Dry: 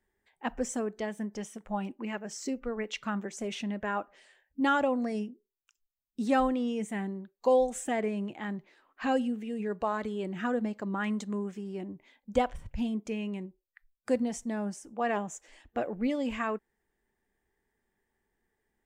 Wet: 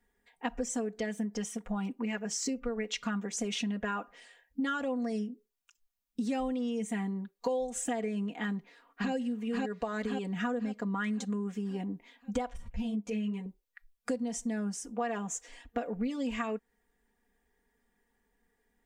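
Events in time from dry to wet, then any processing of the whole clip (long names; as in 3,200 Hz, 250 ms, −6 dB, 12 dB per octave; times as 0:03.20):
0:08.47–0:09.12: delay throw 530 ms, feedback 45%, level 0 dB
0:12.57–0:13.46: string-ensemble chorus
whole clip: comb filter 4.2 ms, depth 87%; dynamic equaliser 6,000 Hz, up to +5 dB, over −50 dBFS, Q 0.76; downward compressor 6 to 1, threshold −32 dBFS; level +1.5 dB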